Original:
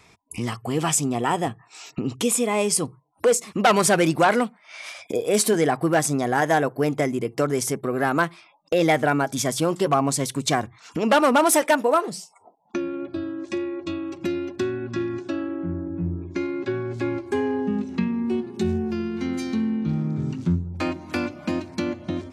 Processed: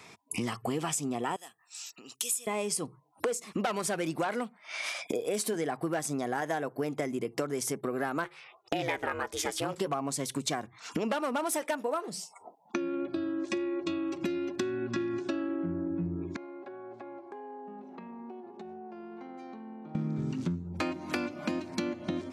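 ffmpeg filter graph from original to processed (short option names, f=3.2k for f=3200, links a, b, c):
-filter_complex "[0:a]asettb=1/sr,asplit=3[a][b][c];[a]atrim=end=1.364[d];[b]atrim=start=1.36:end=2.47,asetpts=PTS-STARTPTS,afade=t=in:d=0.004:c=qsin,afade=t=out:st=1.106:d=0.004:c=qsin,highpass=60,aderivative,bandreject=f=2.2k:w=8.9[e];[c]atrim=start=2.466[f];[d][e]acrossfade=d=0.004:c1=hsin:c2=qsin[g];[g][f]acrossfade=d=0.004:c1=qsin:c2=hsin,asettb=1/sr,asplit=3[h][i][j];[h]atrim=end=8.244[k];[i]atrim=start=8.24:end=9.78,asetpts=PTS-STARTPTS,afade=t=in:d=0.004:c=qsin,afade=t=out:st=1.536:d=0.004:c=qsin,equalizer=f=2k:t=o:w=1.9:g=7,aeval=exprs='val(0)*sin(2*PI*190*n/s)':c=same[l];[j]atrim=start=9.776[m];[k][l]acrossfade=d=0.004:c1=hsin:c2=qsin[n];[n][m]acrossfade=d=0.004:c1=qsin:c2=hsin,asettb=1/sr,asplit=3[o][p][q];[o]atrim=end=16.364[r];[p]atrim=start=16.36:end=19.95,asetpts=PTS-STARTPTS,afade=t=in:d=0.004:c=qsin,afade=t=out:st=3.586:d=0.004:c=qsin,bandpass=f=740:t=q:w=2.9,acompressor=threshold=-42dB:ratio=12:attack=3.2:release=140:knee=1:detection=peak[s];[q]atrim=start=19.946[t];[r][s]acrossfade=d=0.004:c1=hsin:c2=qsin[u];[u][t]acrossfade=d=0.004:c1=qsin:c2=hsin,highpass=150,acompressor=threshold=-32dB:ratio=6,volume=2.5dB"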